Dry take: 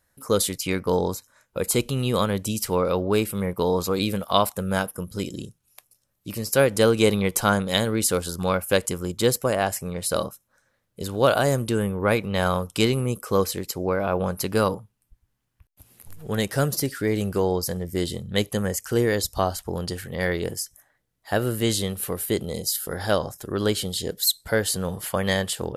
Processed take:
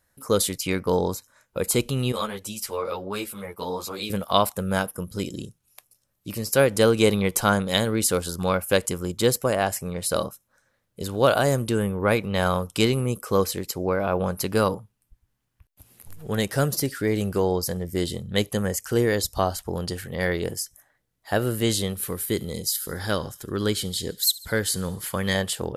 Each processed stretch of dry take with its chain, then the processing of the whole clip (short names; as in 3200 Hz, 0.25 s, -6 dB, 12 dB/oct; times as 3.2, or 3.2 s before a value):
2.12–4.1 low shelf 350 Hz -11.5 dB + ensemble effect
21.95–25.35 bell 680 Hz -8 dB 0.83 oct + notch 2800 Hz, Q 15 + thin delay 71 ms, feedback 58%, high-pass 2000 Hz, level -20 dB
whole clip: dry